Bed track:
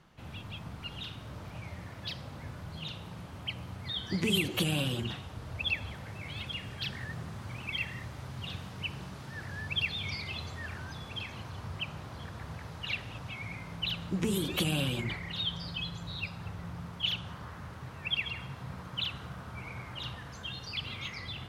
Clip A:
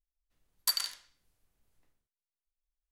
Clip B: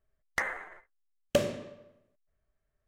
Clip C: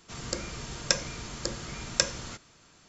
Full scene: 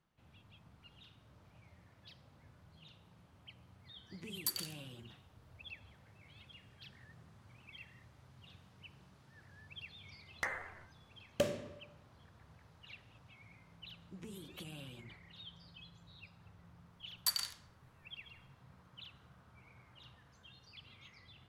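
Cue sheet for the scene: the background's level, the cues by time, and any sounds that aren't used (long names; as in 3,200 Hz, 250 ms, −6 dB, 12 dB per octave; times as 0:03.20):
bed track −19 dB
0:03.79: mix in A −12 dB + high-shelf EQ 8,700 Hz +10.5 dB
0:10.05: mix in B −7 dB
0:16.59: mix in A −4.5 dB
not used: C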